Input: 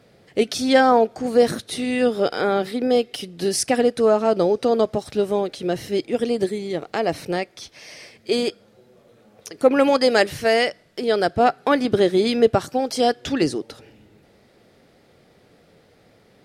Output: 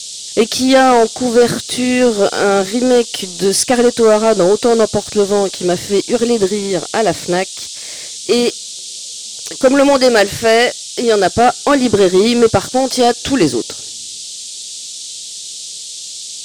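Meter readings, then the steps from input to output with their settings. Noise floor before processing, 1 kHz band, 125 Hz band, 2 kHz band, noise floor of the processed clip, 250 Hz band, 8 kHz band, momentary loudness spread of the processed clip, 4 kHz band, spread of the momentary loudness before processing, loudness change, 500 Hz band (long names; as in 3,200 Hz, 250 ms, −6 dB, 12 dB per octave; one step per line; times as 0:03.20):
−56 dBFS, +6.5 dB, +8.0 dB, +7.0 dB, −29 dBFS, +7.5 dB, +14.5 dB, 15 LU, +10.0 dB, 10 LU, +7.5 dB, +7.0 dB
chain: leveller curve on the samples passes 2
noise in a band 3,300–8,700 Hz −30 dBFS
level +1.5 dB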